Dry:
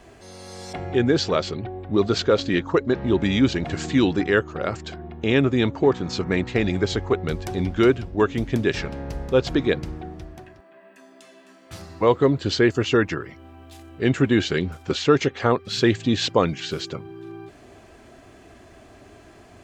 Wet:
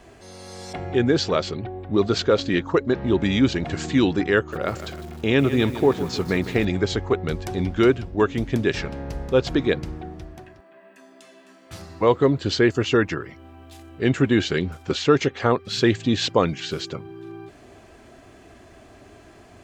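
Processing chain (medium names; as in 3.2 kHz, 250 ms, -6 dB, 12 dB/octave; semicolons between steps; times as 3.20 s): 4.37–6.65 s: bit-crushed delay 155 ms, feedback 55%, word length 6-bit, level -12 dB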